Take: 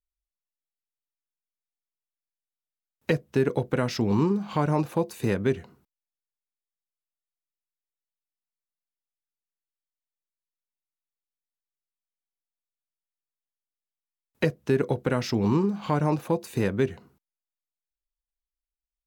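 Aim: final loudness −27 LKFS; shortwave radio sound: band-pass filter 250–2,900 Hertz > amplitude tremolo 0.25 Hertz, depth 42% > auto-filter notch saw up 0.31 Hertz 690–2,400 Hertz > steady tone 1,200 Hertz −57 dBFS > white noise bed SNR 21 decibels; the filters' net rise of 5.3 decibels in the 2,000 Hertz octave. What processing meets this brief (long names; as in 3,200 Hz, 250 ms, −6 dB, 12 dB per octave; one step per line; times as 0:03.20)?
band-pass filter 250–2,900 Hz
parametric band 2,000 Hz +7.5 dB
amplitude tremolo 0.25 Hz, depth 42%
auto-filter notch saw up 0.31 Hz 690–2,400 Hz
steady tone 1,200 Hz −57 dBFS
white noise bed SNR 21 dB
level +4 dB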